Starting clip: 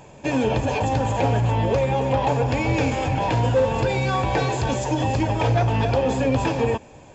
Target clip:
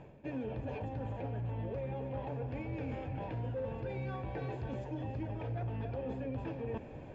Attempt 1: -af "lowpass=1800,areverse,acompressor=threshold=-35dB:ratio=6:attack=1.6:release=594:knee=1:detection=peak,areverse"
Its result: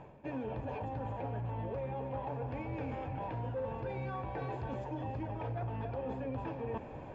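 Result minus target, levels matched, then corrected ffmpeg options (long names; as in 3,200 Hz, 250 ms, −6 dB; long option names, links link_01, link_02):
1,000 Hz band +5.0 dB
-af "lowpass=1800,equalizer=frequency=990:width=1.3:gain=-8.5,areverse,acompressor=threshold=-35dB:ratio=6:attack=1.6:release=594:knee=1:detection=peak,areverse"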